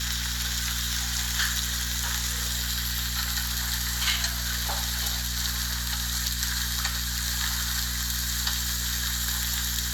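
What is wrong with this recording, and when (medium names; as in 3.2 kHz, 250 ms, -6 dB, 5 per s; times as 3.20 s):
hum 60 Hz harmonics 4 -33 dBFS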